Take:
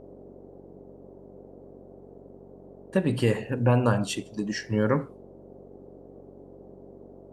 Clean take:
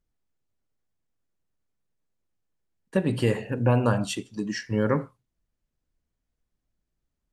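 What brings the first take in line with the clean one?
de-hum 46.9 Hz, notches 11; notch 400 Hz, Q 30; noise print and reduce 30 dB

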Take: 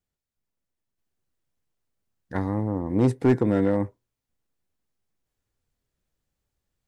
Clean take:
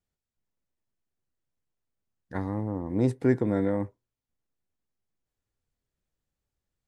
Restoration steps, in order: clip repair -12.5 dBFS; gain 0 dB, from 0.98 s -4.5 dB

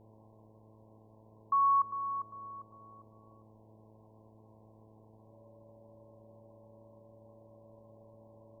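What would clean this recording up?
de-hum 109 Hz, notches 6; notch 570 Hz, Q 30; noise print and reduce 26 dB; inverse comb 0.101 s -19 dB

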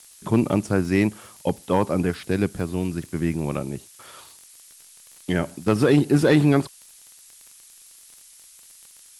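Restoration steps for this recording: clip repair -8.5 dBFS; de-click; noise print and reduce 17 dB

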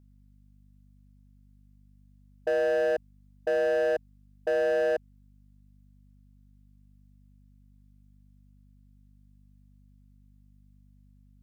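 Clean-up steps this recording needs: clip repair -22.5 dBFS; de-hum 49.6 Hz, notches 5

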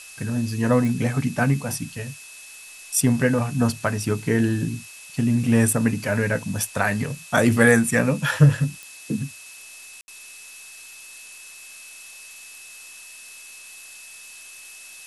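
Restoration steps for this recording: de-click; notch 2600 Hz, Q 30; room tone fill 10.01–10.08; noise print and reduce 24 dB

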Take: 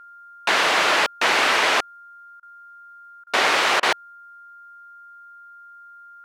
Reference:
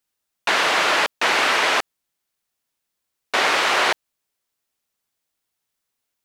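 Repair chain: notch 1400 Hz, Q 30; interpolate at 2.4/3.24/3.8, 27 ms

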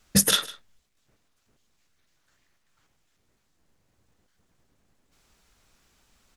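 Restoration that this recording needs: clip repair -7 dBFS; inverse comb 0.153 s -19 dB

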